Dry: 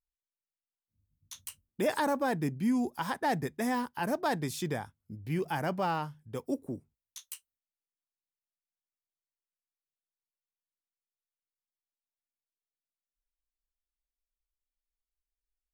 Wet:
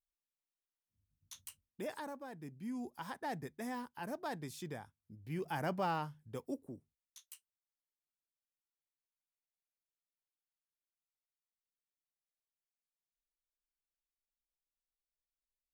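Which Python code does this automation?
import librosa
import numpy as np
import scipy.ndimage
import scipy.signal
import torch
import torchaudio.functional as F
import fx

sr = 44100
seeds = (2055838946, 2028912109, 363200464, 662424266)

y = fx.gain(x, sr, db=fx.line((1.37, -6.0), (2.3, -19.0), (2.92, -11.0), (5.15, -11.0), (5.64, -4.5), (6.24, -4.5), (6.74, -11.0)))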